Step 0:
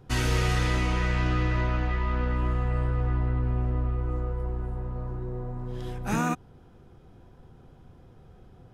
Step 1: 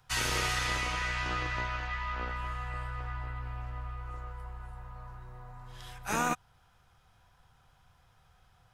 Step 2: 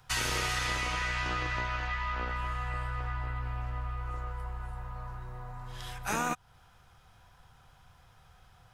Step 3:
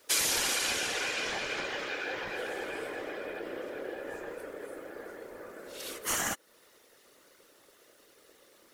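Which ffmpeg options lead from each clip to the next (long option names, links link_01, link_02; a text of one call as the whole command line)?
ffmpeg -i in.wav -filter_complex "[0:a]bass=frequency=250:gain=-12,treble=frequency=4000:gain=3,acrossover=split=150|780|1600[link_01][link_02][link_03][link_04];[link_02]acrusher=bits=4:mix=0:aa=0.5[link_05];[link_01][link_05][link_03][link_04]amix=inputs=4:normalize=0" out.wav
ffmpeg -i in.wav -af "acompressor=threshold=-37dB:ratio=2,volume=5dB" out.wav
ffmpeg -i in.wav -af "aeval=exprs='val(0)*sin(2*PI*460*n/s)':channel_layout=same,afftfilt=real='hypot(re,im)*cos(2*PI*random(0))':imag='hypot(re,im)*sin(2*PI*random(1))':win_size=512:overlap=0.75,crystalizer=i=4.5:c=0,volume=3.5dB" out.wav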